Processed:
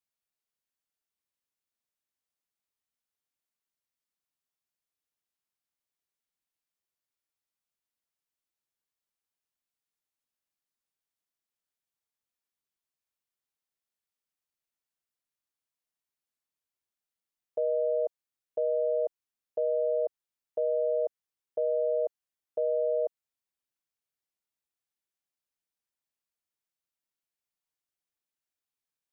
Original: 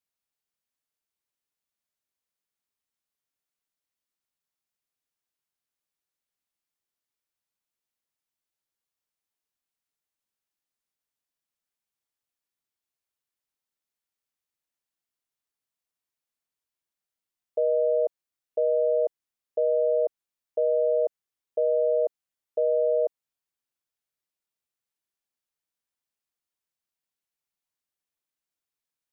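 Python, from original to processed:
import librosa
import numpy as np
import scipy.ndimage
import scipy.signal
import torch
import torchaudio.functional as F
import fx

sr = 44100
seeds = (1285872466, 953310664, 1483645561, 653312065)

y = fx.dynamic_eq(x, sr, hz=290.0, q=1.0, threshold_db=-40.0, ratio=4.0, max_db=-3)
y = y * librosa.db_to_amplitude(-3.5)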